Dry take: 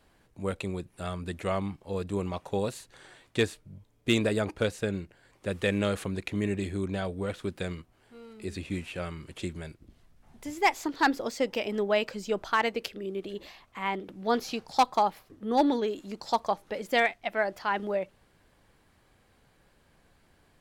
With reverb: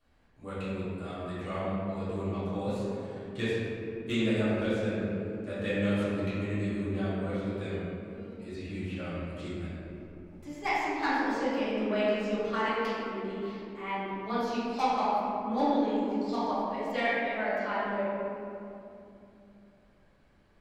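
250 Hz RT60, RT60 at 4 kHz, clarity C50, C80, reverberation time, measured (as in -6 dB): 4.4 s, 1.4 s, -4.0 dB, -1.5 dB, 2.9 s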